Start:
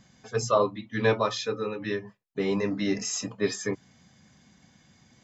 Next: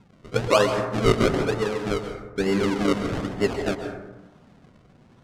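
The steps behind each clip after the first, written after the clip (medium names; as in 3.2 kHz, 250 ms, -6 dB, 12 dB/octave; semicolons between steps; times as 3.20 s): decimation with a swept rate 36×, swing 100% 1.1 Hz; distance through air 65 m; plate-style reverb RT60 1.1 s, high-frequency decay 0.35×, pre-delay 115 ms, DRR 6 dB; trim +4 dB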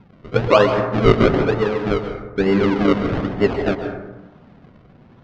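distance through air 210 m; trim +6.5 dB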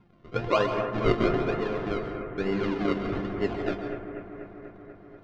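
feedback comb 350 Hz, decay 0.17 s, harmonics all, mix 80%; on a send: bucket-brigade echo 243 ms, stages 4096, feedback 74%, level -10 dB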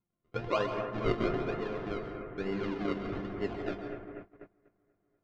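gate -38 dBFS, range -21 dB; trim -6.5 dB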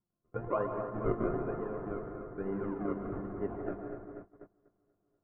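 low-pass 1.4 kHz 24 dB/octave; trim -1.5 dB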